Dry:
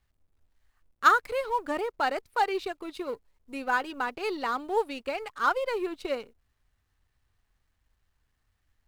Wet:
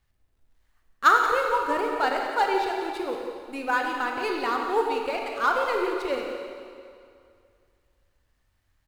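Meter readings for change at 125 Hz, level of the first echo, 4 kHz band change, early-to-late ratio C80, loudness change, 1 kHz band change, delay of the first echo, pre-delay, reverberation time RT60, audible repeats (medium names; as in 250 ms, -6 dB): no reading, -11.0 dB, +4.0 dB, 3.0 dB, +3.5 dB, +4.0 dB, 176 ms, 25 ms, 2.3 s, 1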